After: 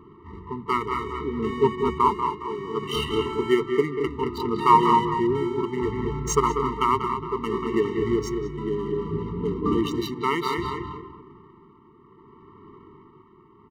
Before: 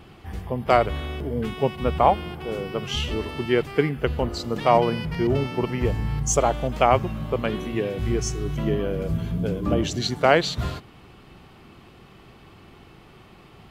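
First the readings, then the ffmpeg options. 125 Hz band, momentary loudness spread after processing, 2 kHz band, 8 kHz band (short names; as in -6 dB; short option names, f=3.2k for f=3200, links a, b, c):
-6.0 dB, 9 LU, -4.0 dB, -5.5 dB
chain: -filter_complex "[0:a]lowshelf=f=99:g=-11,bandreject=f=60:t=h:w=6,bandreject=f=120:t=h:w=6,bandreject=f=180:t=h:w=6,asplit=2[a][b];[b]adelay=221,lowpass=f=1.7k:p=1,volume=-5.5dB,asplit=2[c][d];[d]adelay=221,lowpass=f=1.7k:p=1,volume=0.25,asplit=2[e][f];[f]adelay=221,lowpass=f=1.7k:p=1,volume=0.25[g];[c][e][g]amix=inputs=3:normalize=0[h];[a][h]amix=inputs=2:normalize=0,adynamicsmooth=sensitivity=7:basefreq=960,asplit=2[i][j];[j]adelay=190,highpass=300,lowpass=3.4k,asoftclip=type=hard:threshold=-8.5dB,volume=-6dB[k];[i][k]amix=inputs=2:normalize=0,tremolo=f=0.63:d=0.51,equalizer=f=740:w=0.73:g=11,afftfilt=real='re*eq(mod(floor(b*sr/1024/450),2),0)':imag='im*eq(mod(floor(b*sr/1024/450),2),0)':win_size=1024:overlap=0.75"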